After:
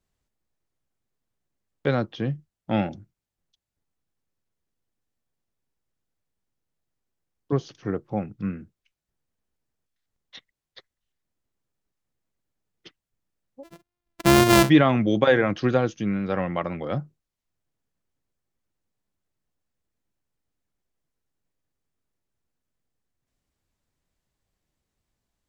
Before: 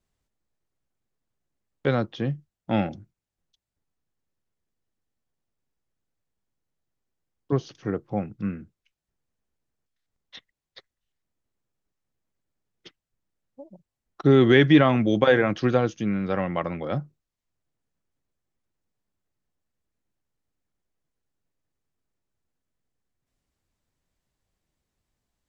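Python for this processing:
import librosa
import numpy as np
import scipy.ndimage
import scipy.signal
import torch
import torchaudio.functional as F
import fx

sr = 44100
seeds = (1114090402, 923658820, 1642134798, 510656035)

y = fx.sample_sort(x, sr, block=128, at=(13.63, 14.68), fade=0.02)
y = fx.wow_flutter(y, sr, seeds[0], rate_hz=2.1, depth_cents=38.0)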